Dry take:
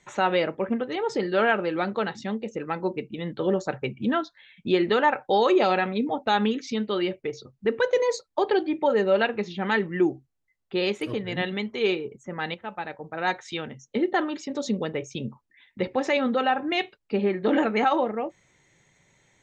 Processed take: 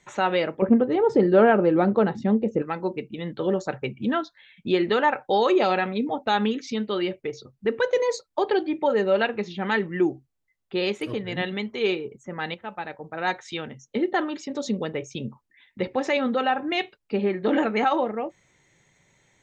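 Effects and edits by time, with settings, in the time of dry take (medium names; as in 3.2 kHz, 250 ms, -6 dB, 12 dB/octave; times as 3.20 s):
0.62–2.62 s: tilt shelf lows +10 dB, about 1.3 kHz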